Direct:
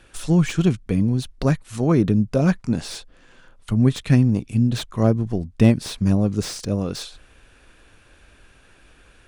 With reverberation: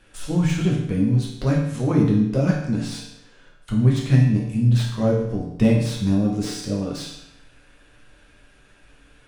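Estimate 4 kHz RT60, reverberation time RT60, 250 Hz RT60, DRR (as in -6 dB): 0.75 s, 0.80 s, 0.85 s, -3.5 dB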